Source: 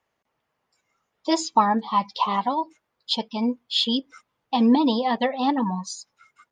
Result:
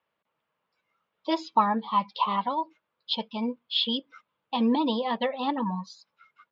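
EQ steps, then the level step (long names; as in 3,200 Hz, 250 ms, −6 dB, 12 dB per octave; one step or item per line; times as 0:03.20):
loudspeaker in its box 120–3,800 Hz, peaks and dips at 120 Hz −8 dB, 260 Hz −7 dB, 380 Hz −6 dB, 750 Hz −7 dB, 1,900 Hz −5 dB
−1.0 dB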